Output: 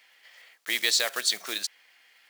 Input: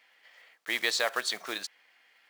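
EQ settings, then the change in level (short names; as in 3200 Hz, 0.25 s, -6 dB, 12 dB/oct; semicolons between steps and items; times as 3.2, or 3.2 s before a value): HPF 84 Hz; dynamic EQ 990 Hz, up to -6 dB, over -43 dBFS, Q 0.92; high shelf 2900 Hz +10 dB; 0.0 dB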